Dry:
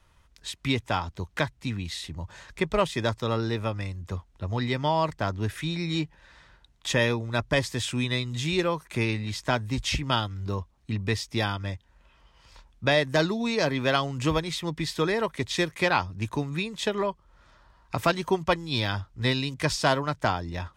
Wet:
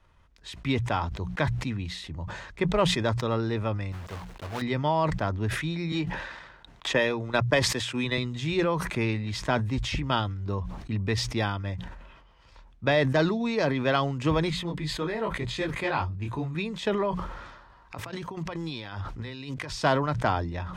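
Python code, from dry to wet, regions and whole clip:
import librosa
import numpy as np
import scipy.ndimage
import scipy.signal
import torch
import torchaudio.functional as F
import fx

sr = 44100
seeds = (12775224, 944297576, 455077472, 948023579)

y = fx.chain(x, sr, fx.block_float(bits=3),
    fx.low_shelf(hz=360.0, db=-8.5), at=(3.92, 4.62))
y = fx.chain(y, sr, fx.low_shelf(hz=190.0, db=-11.0),
    fx.transient(attack_db=6, sustain_db=-9),
    fx.band_squash(depth_pct=40), at=(5.92, 8.18))
y = fx.chain(y, sr, fx.low_shelf(hz=71.0, db=7.5),
    fx.notch(hz=5600.0, q=6.7),
    fx.detune_double(cents=32), at=(14.5, 16.55))
y = fx.chain(y, sr, fx.low_shelf(hz=210.0, db=-7.0),
    fx.notch(hz=630.0, q=15.0),
    fx.over_compress(threshold_db=-38.0, ratio=-1.0), at=(17.1, 19.7))
y = fx.lowpass(y, sr, hz=2300.0, slope=6)
y = fx.hum_notches(y, sr, base_hz=60, count=3)
y = fx.sustainer(y, sr, db_per_s=47.0)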